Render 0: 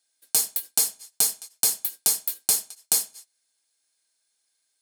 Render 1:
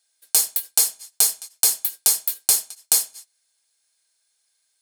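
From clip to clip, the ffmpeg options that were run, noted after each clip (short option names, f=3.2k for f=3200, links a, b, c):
-af "equalizer=f=200:w=0.76:g=-9.5,volume=4dB"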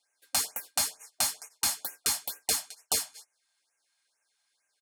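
-filter_complex "[0:a]aecho=1:1:6.9:0.32,asplit=2[a][b];[b]highpass=f=720:p=1,volume=10dB,asoftclip=type=tanh:threshold=-1dB[c];[a][c]amix=inputs=2:normalize=0,lowpass=f=1.3k:p=1,volume=-6dB,afftfilt=real='re*(1-between(b*sr/1024,380*pow(4100/380,0.5+0.5*sin(2*PI*2.2*pts/sr))/1.41,380*pow(4100/380,0.5+0.5*sin(2*PI*2.2*pts/sr))*1.41))':imag='im*(1-between(b*sr/1024,380*pow(4100/380,0.5+0.5*sin(2*PI*2.2*pts/sr))/1.41,380*pow(4100/380,0.5+0.5*sin(2*PI*2.2*pts/sr))*1.41))':win_size=1024:overlap=0.75"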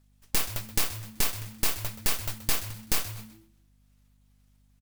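-filter_complex "[0:a]aeval=exprs='abs(val(0))':c=same,aeval=exprs='val(0)+0.000501*(sin(2*PI*50*n/s)+sin(2*PI*2*50*n/s)/2+sin(2*PI*3*50*n/s)/3+sin(2*PI*4*50*n/s)/4+sin(2*PI*5*50*n/s)/5)':c=same,asplit=4[a][b][c][d];[b]adelay=127,afreqshift=-110,volume=-13.5dB[e];[c]adelay=254,afreqshift=-220,volume=-23.1dB[f];[d]adelay=381,afreqshift=-330,volume=-32.8dB[g];[a][e][f][g]amix=inputs=4:normalize=0,volume=4dB"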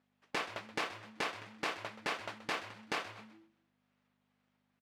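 -af "highpass=350,lowpass=2.3k,volume=1dB"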